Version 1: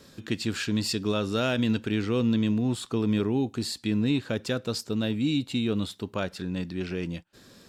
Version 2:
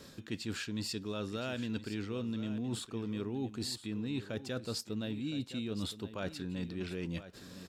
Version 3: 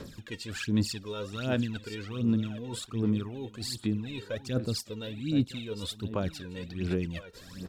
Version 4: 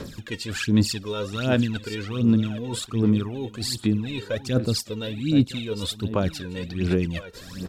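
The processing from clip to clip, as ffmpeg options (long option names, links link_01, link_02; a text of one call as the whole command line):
ffmpeg -i in.wav -af "areverse,acompressor=threshold=-35dB:ratio=6,areverse,aecho=1:1:1016:0.211" out.wav
ffmpeg -i in.wav -af "lowshelf=frequency=65:gain=5.5,aphaser=in_gain=1:out_gain=1:delay=2.2:decay=0.74:speed=1.3:type=sinusoidal" out.wav
ffmpeg -i in.wav -af "volume=8dB" -ar 44100 -c:a libmp3lame -b:a 96k out.mp3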